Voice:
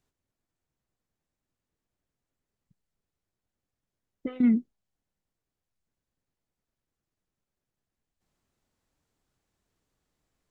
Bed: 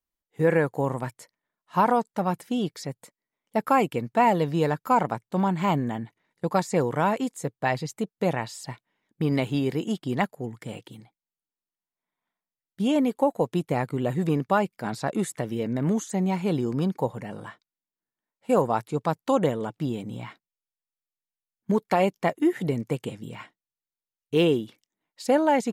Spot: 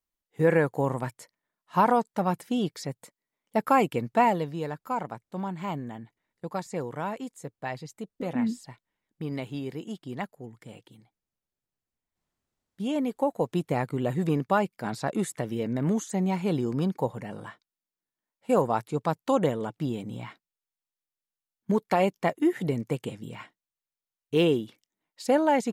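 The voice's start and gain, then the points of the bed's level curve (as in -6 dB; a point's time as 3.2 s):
3.95 s, -5.5 dB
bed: 4.19 s -0.5 dB
4.56 s -9 dB
12.43 s -9 dB
13.59 s -1.5 dB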